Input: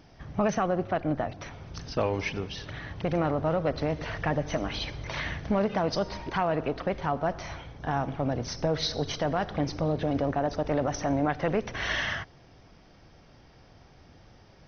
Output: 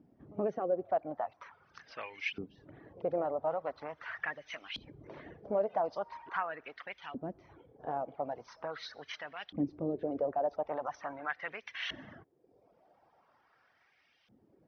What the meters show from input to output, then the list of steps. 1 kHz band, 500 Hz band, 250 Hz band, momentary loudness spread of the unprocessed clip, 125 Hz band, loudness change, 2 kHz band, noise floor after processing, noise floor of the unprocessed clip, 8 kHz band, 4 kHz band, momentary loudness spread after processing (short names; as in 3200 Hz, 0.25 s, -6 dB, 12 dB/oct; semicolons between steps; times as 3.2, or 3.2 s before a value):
-7.0 dB, -6.5 dB, -11.5 dB, 9 LU, -19.5 dB, -8.0 dB, -7.0 dB, -71 dBFS, -55 dBFS, n/a, -10.5 dB, 16 LU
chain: pre-echo 78 ms -22 dB; reverb removal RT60 0.8 s; LFO band-pass saw up 0.42 Hz 240–3000 Hz